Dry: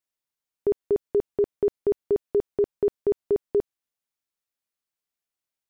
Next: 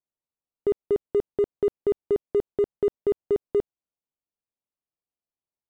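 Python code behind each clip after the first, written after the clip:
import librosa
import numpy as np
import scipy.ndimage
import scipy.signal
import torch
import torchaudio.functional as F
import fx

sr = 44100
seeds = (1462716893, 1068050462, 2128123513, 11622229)

y = fx.wiener(x, sr, points=25)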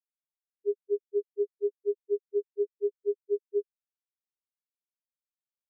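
y = fx.level_steps(x, sr, step_db=21)
y = fx.spec_topn(y, sr, count=1)
y = F.gain(torch.from_numpy(y), 2.0).numpy()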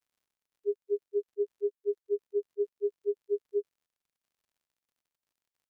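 y = fx.dmg_crackle(x, sr, seeds[0], per_s=78.0, level_db=-63.0)
y = F.gain(torch.from_numpy(y), -1.5).numpy()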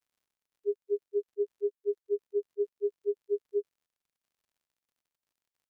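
y = x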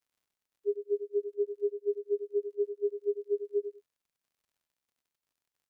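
y = fx.echo_feedback(x, sr, ms=98, feedback_pct=17, wet_db=-9.5)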